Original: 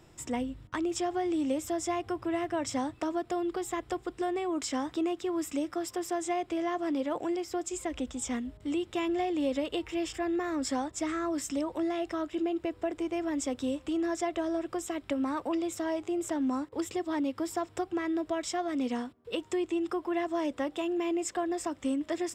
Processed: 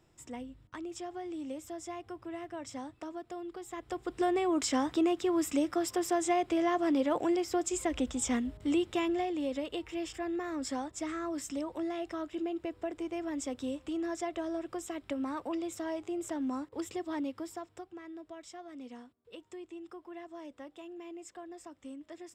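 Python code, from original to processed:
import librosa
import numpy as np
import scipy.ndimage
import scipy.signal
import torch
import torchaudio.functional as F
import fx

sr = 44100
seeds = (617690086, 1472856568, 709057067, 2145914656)

y = fx.gain(x, sr, db=fx.line((3.66, -10.0), (4.23, 2.5), (8.79, 2.5), (9.42, -4.5), (17.23, -4.5), (17.95, -15.0)))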